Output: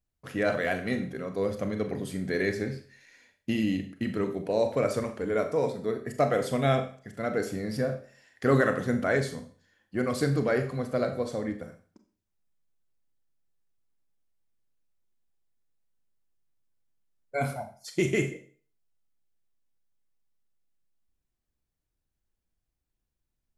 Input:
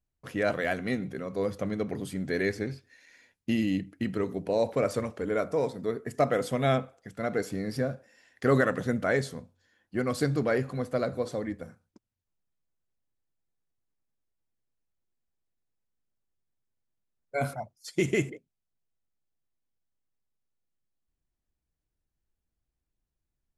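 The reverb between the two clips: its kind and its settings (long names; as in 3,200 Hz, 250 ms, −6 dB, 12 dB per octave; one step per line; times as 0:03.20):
four-comb reverb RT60 0.42 s, combs from 29 ms, DRR 7 dB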